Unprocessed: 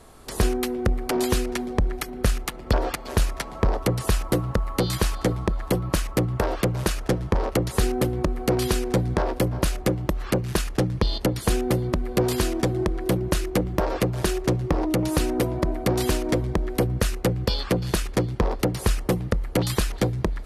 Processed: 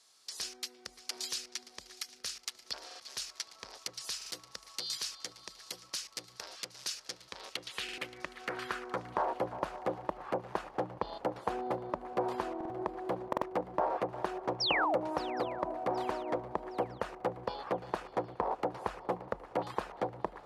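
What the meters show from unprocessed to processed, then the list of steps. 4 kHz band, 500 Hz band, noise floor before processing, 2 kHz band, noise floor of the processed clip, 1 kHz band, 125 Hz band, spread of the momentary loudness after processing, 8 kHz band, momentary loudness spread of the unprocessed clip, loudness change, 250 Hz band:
-6.5 dB, -11.0 dB, -37 dBFS, -8.5 dB, -59 dBFS, -4.0 dB, -26.5 dB, 9 LU, -10.5 dB, 3 LU, -12.0 dB, -17.5 dB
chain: band-pass sweep 5.2 kHz -> 840 Hz, 7.07–9.37 s; painted sound fall, 14.60–14.98 s, 470–5900 Hz -31 dBFS; on a send: shuffle delay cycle 766 ms, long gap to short 3:1, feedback 46%, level -18.5 dB; on the sum: buffer glitch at 2.86/4.17/7.84/12.56/13.28 s, samples 2048, times 2

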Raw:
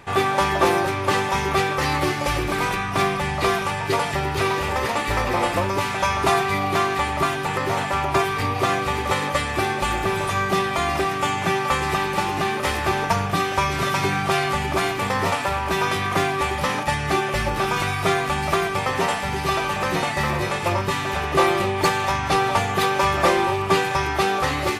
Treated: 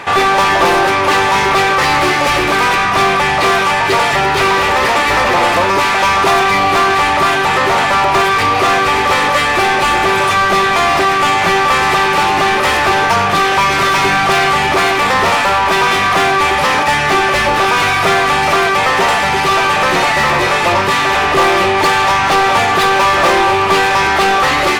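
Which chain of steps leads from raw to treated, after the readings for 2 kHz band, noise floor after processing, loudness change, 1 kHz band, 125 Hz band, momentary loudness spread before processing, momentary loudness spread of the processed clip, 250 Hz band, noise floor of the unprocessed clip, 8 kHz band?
+12.5 dB, -14 dBFS, +10.5 dB, +11.0 dB, +2.0 dB, 3 LU, 1 LU, +6.0 dB, -26 dBFS, +9.0 dB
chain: overdrive pedal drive 23 dB, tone 3.4 kHz, clips at -8.5 dBFS; trim +4 dB

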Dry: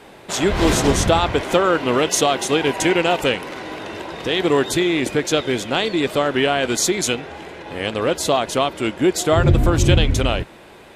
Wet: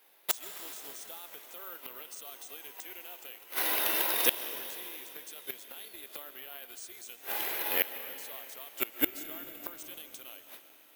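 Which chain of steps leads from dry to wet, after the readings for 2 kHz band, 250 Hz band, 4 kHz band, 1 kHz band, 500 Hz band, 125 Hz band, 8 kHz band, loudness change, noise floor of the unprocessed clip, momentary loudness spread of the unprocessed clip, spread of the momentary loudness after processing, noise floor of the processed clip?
-15.5 dB, -27.0 dB, -16.0 dB, -21.0 dB, -26.0 dB, under -40 dB, -15.5 dB, -15.0 dB, -43 dBFS, 11 LU, 17 LU, -57 dBFS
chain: gate with hold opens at -30 dBFS; high-pass 290 Hz 12 dB/octave; tilt EQ +3.5 dB/octave; peak limiter -7 dBFS, peak gain reduction 10 dB; AM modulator 290 Hz, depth 20%; inverted gate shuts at -14 dBFS, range -28 dB; algorithmic reverb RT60 3.4 s, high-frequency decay 1×, pre-delay 95 ms, DRR 10 dB; careless resampling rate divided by 3×, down filtered, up zero stuff; trim -1.5 dB

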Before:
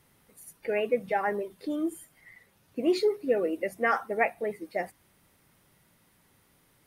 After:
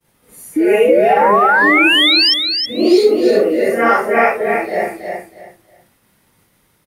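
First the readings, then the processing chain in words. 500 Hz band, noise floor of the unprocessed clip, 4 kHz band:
+16.0 dB, -66 dBFS, +32.0 dB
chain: phase randomisation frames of 200 ms; expander -58 dBFS; painted sound rise, 0.56–2.34 s, 300–5500 Hz -26 dBFS; feedback delay 320 ms, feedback 23%, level -5.5 dB; loudness maximiser +14.5 dB; trim -1 dB

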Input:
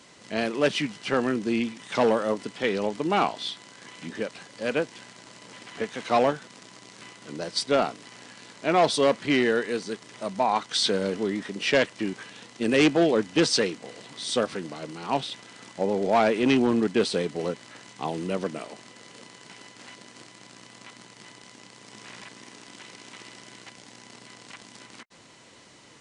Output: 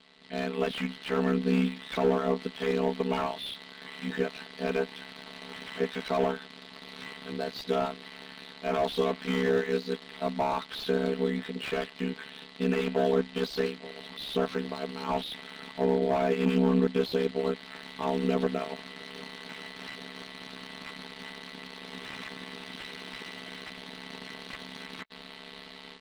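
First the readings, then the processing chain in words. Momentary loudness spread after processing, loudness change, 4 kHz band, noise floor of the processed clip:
16 LU, -5.5 dB, -6.5 dB, -48 dBFS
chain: resonant high shelf 5 kHz -8.5 dB, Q 3; robot voice 220 Hz; level rider gain up to 13 dB; peak limiter -7 dBFS, peak gain reduction 6 dB; ring modulator 35 Hz; slew-rate limiter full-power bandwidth 78 Hz; trim -2.5 dB

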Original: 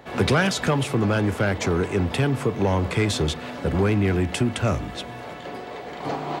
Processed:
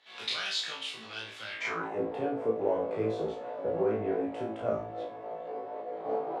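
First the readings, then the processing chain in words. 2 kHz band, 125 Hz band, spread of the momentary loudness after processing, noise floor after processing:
-11.0 dB, -23.0 dB, 10 LU, -46 dBFS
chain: chorus voices 2, 1.5 Hz, delay 29 ms, depth 3 ms; flutter echo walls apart 3.1 m, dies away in 0.38 s; band-pass sweep 3.7 kHz -> 540 Hz, 1.49–1.99 s

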